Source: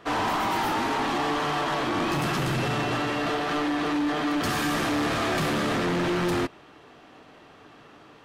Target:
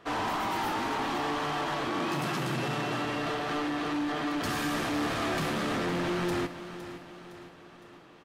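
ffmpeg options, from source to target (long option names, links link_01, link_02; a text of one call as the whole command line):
ffmpeg -i in.wav -filter_complex "[0:a]asettb=1/sr,asplit=3[link_01][link_02][link_03];[link_01]atrim=end=1.884[link_04];[link_02]atrim=start=1.88:end=3.05,asetpts=PTS-STARTPTS,afade=type=in:duration=0.004:curve=qsin,afade=type=out:start_time=1.166:duration=0.004:curve=qsin,highpass=frequency=120:width=0.5412,highpass=frequency=120:width=1.3066[link_05];[link_03]atrim=start=3.046[link_06];[link_04][link_05]acrossfade=duration=0.004:curve1=hsin:curve2=qsin[link_07];[link_07][link_06]acrossfade=duration=0.004:curve1=qsin:curve2=hsin,asplit=2[link_08][link_09];[link_09]aecho=0:1:511|1022|1533|2044|2555:0.237|0.119|0.0593|0.0296|0.0148[link_10];[link_08][link_10]amix=inputs=2:normalize=0,volume=-5dB" out.wav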